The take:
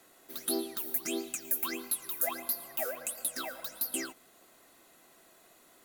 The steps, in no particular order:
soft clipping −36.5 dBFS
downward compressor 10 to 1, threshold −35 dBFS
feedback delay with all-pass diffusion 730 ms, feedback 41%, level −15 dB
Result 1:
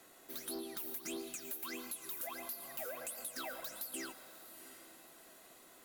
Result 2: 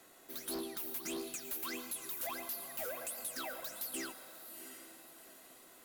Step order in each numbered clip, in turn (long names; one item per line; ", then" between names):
downward compressor, then feedback delay with all-pass diffusion, then soft clipping
feedback delay with all-pass diffusion, then soft clipping, then downward compressor